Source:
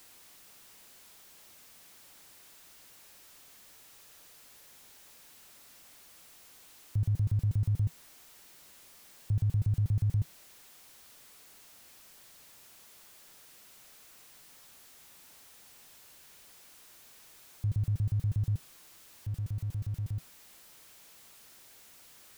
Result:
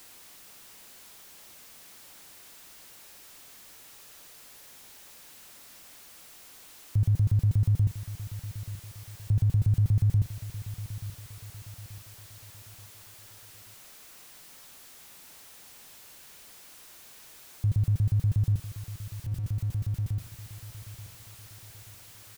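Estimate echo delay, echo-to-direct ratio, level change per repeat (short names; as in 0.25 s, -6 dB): 0.881 s, -13.0 dB, -7.5 dB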